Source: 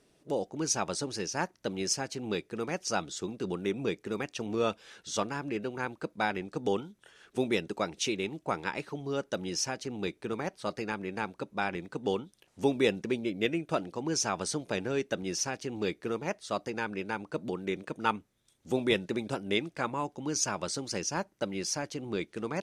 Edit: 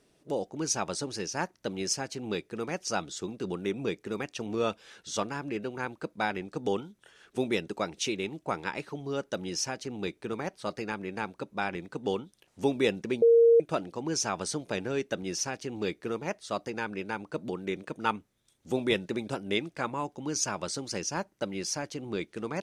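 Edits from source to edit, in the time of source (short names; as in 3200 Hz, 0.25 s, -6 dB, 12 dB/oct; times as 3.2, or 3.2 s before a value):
13.22–13.6 bleep 464 Hz -15.5 dBFS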